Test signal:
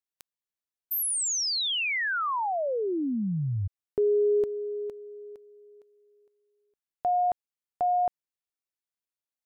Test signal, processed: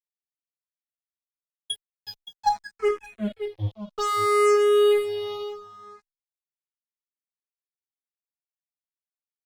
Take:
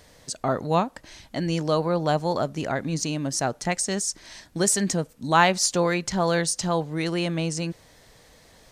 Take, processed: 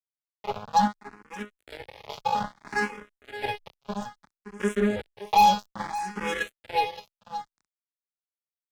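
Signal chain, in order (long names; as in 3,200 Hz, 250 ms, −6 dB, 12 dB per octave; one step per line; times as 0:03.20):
spectrum averaged block by block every 50 ms
high-pass filter 580 Hz 6 dB per octave
high-shelf EQ 5,600 Hz +7.5 dB
background noise white −49 dBFS
resonances in every octave G#, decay 0.48 s
fuzz pedal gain 44 dB, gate −51 dBFS
single-tap delay 571 ms −11.5 dB
frequency shifter mixed with the dry sound +0.61 Hz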